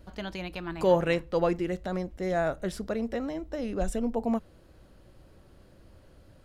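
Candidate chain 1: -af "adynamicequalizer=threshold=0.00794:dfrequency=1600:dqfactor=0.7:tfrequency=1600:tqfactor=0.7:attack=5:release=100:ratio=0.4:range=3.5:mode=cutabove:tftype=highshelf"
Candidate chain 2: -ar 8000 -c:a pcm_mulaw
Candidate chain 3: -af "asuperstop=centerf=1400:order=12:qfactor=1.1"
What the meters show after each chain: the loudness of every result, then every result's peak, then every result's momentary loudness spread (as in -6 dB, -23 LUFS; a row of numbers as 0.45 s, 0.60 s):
-30.0 LUFS, -30.0 LUFS, -30.5 LUFS; -11.5 dBFS, -11.5 dBFS, -12.0 dBFS; 11 LU, 11 LU, 11 LU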